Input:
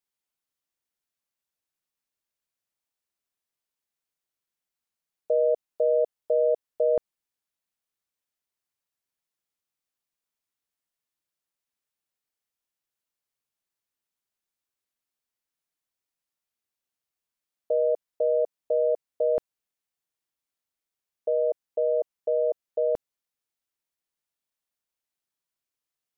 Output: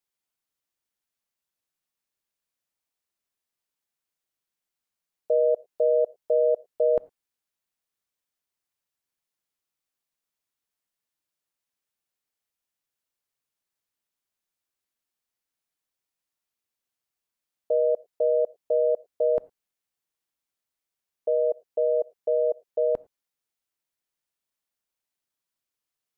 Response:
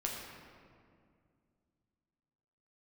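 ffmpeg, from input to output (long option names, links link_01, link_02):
-filter_complex "[0:a]asplit=2[link_01][link_02];[1:a]atrim=start_sample=2205,atrim=end_sample=6615,asetrate=57330,aresample=44100[link_03];[link_02][link_03]afir=irnorm=-1:irlink=0,volume=-17dB[link_04];[link_01][link_04]amix=inputs=2:normalize=0"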